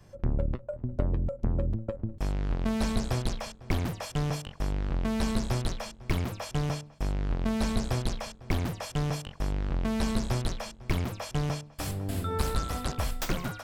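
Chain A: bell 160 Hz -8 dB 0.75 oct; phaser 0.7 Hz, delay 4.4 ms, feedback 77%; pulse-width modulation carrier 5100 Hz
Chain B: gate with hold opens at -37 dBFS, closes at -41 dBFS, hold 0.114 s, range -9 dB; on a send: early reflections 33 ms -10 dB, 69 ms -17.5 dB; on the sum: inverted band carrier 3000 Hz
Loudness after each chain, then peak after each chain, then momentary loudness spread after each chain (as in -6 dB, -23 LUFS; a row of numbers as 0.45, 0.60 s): -25.0, -25.5 LUFS; -6.0, -11.5 dBFS; 4, 5 LU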